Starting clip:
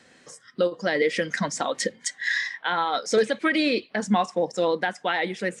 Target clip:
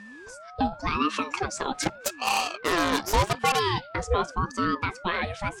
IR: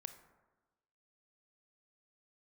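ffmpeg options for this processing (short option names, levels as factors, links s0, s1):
-filter_complex "[0:a]asplit=3[s0][s1][s2];[s0]afade=t=out:st=1.82:d=0.02[s3];[s1]aeval=exprs='0.251*(cos(1*acos(clip(val(0)/0.251,-1,1)))-cos(1*PI/2))+0.0631*(cos(8*acos(clip(val(0)/0.251,-1,1)))-cos(8*PI/2))':c=same,afade=t=in:st=1.82:d=0.02,afade=t=out:st=3.58:d=0.02[s4];[s2]afade=t=in:st=3.58:d=0.02[s5];[s3][s4][s5]amix=inputs=3:normalize=0,aeval=exprs='val(0)+0.0112*sin(2*PI*1000*n/s)':c=same,aeval=exprs='val(0)*sin(2*PI*530*n/s+530*0.5/0.86*sin(2*PI*0.86*n/s))':c=same"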